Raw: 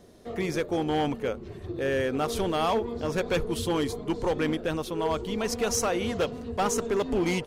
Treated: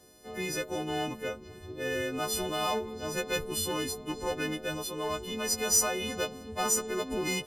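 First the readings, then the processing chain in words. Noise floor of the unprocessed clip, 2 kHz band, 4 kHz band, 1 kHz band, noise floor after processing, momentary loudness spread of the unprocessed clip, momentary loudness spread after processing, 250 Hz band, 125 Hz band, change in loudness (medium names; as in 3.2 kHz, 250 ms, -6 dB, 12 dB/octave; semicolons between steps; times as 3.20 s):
-43 dBFS, -0.5 dB, +1.5 dB, -4.5 dB, -49 dBFS, 5 LU, 9 LU, -7.0 dB, -7.5 dB, -2.5 dB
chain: partials quantised in pitch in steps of 3 st; trim -6 dB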